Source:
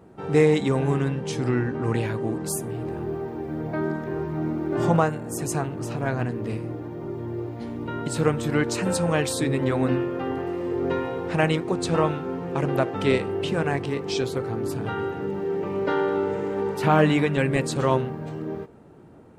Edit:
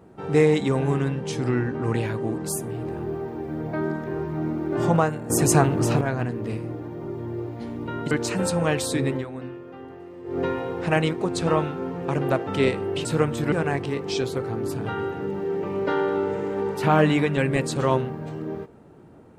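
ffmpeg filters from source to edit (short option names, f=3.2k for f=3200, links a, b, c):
-filter_complex "[0:a]asplit=8[a][b][c][d][e][f][g][h];[a]atrim=end=5.302[i];[b]atrim=start=5.298:end=6.012,asetpts=PTS-STARTPTS,volume=9dB[j];[c]atrim=start=6.008:end=8.112[k];[d]atrim=start=8.578:end=9.73,asetpts=PTS-STARTPTS,afade=t=out:st=0.992:d=0.16:silence=0.237137[l];[e]atrim=start=9.73:end=10.71,asetpts=PTS-STARTPTS,volume=-12.5dB[m];[f]atrim=start=10.71:end=13.522,asetpts=PTS-STARTPTS,afade=t=in:d=0.16:silence=0.237137[n];[g]atrim=start=8.108:end=8.582[o];[h]atrim=start=13.518[p];[i][j]acrossfade=d=0.004:c1=hsin:c2=hsin[q];[q][k]acrossfade=d=0.004:c1=hsin:c2=hsin[r];[l][m][n]concat=n=3:v=0:a=1[s];[r][s]acrossfade=d=0.004:c1=hsin:c2=hsin[t];[t][o]acrossfade=d=0.004:c1=hsin:c2=hsin[u];[u][p]acrossfade=d=0.004:c1=hsin:c2=hsin"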